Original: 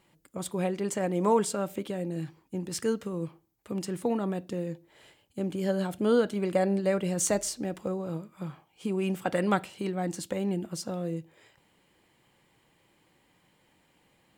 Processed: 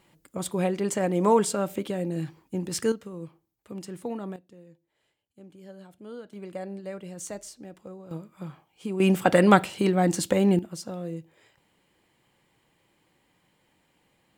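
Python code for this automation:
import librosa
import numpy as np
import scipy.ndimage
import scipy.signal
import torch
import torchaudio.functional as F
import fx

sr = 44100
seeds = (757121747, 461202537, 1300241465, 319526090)

y = fx.gain(x, sr, db=fx.steps((0.0, 3.5), (2.92, -5.0), (4.36, -17.5), (6.33, -10.5), (8.11, -1.0), (9.0, 9.0), (10.59, -1.5)))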